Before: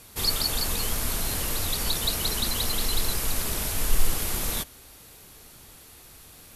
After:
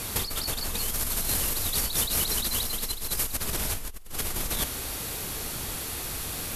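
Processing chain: negative-ratio compressor -36 dBFS, ratio -1; 0.78–3.36 high shelf 5000 Hz +5.5 dB; gain +5 dB

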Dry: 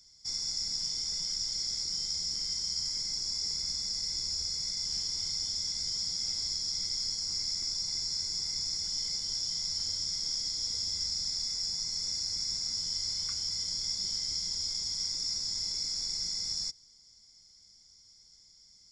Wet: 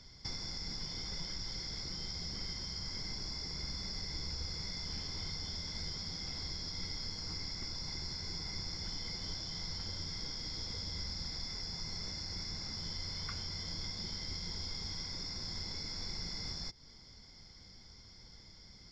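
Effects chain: compressor, threshold -41 dBFS, peak gain reduction 11 dB; air absorption 360 m; gain +17.5 dB

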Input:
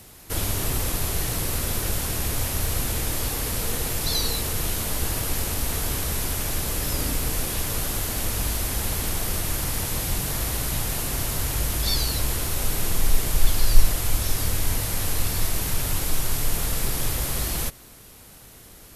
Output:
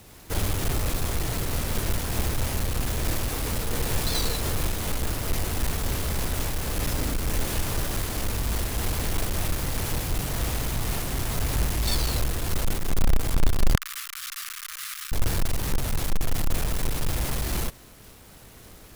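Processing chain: half-waves squared off; 13.75–15.12 elliptic high-pass 1200 Hz, stop band 40 dB; noise-modulated level, depth 50%; gain -3 dB

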